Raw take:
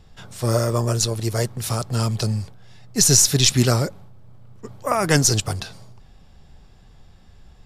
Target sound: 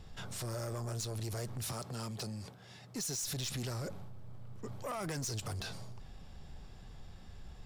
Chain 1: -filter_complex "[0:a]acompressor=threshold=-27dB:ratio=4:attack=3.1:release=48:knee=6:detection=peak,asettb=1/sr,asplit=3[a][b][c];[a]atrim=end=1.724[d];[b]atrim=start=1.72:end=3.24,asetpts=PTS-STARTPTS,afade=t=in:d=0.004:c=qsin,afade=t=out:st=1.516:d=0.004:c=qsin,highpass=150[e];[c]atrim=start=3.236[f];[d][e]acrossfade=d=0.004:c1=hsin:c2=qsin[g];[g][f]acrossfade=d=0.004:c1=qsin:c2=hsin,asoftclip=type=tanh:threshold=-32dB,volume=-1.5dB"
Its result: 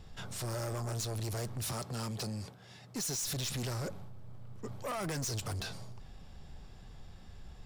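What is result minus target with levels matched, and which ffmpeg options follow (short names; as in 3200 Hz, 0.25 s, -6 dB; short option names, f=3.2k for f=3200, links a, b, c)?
compressor: peak gain reduction -5 dB
-filter_complex "[0:a]acompressor=threshold=-34dB:ratio=4:attack=3.1:release=48:knee=6:detection=peak,asettb=1/sr,asplit=3[a][b][c];[a]atrim=end=1.724[d];[b]atrim=start=1.72:end=3.24,asetpts=PTS-STARTPTS,afade=t=in:d=0.004:c=qsin,afade=t=out:st=1.516:d=0.004:c=qsin,highpass=150[e];[c]atrim=start=3.236[f];[d][e]acrossfade=d=0.004:c1=hsin:c2=qsin[g];[g][f]acrossfade=d=0.004:c1=qsin:c2=hsin,asoftclip=type=tanh:threshold=-32dB,volume=-1.5dB"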